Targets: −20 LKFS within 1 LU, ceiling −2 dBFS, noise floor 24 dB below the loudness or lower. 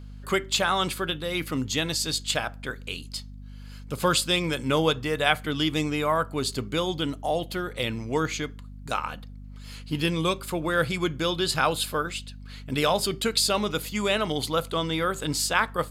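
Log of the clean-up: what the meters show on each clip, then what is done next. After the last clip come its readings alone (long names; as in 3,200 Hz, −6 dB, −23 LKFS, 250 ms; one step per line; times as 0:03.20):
mains hum 50 Hz; hum harmonics up to 250 Hz; level of the hum −39 dBFS; integrated loudness −26.5 LKFS; sample peak −5.0 dBFS; target loudness −20.0 LKFS
→ hum removal 50 Hz, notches 5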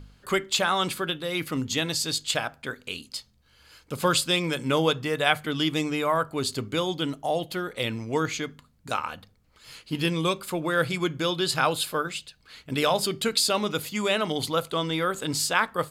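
mains hum none found; integrated loudness −26.5 LKFS; sample peak −5.0 dBFS; target loudness −20.0 LKFS
→ level +6.5 dB
brickwall limiter −2 dBFS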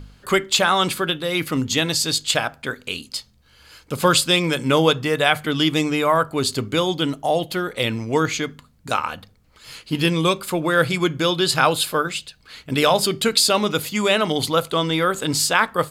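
integrated loudness −20.0 LKFS; sample peak −2.0 dBFS; background noise floor −56 dBFS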